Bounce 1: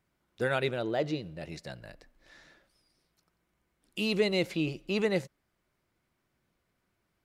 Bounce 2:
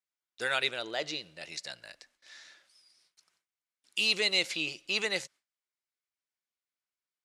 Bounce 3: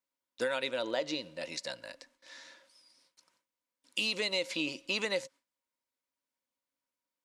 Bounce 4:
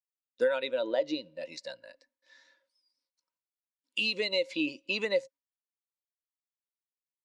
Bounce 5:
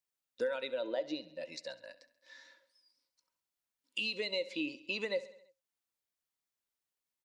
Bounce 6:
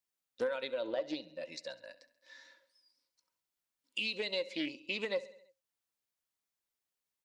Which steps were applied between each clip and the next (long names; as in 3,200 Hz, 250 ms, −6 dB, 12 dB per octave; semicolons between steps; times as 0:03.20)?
meter weighting curve ITU-R 468; noise gate with hold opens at −55 dBFS; low-shelf EQ 110 Hz +5 dB; level −1.5 dB
hollow resonant body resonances 270/530/950 Hz, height 15 dB, ringing for 55 ms; downward compressor 12 to 1, threshold −28 dBFS, peak gain reduction 10 dB
every bin expanded away from the loudest bin 1.5 to 1; level +1.5 dB
downward compressor 1.5 to 1, threshold −57 dBFS, peak gain reduction 12.5 dB; repeating echo 67 ms, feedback 60%, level −18 dB; level +4.5 dB
highs frequency-modulated by the lows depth 0.17 ms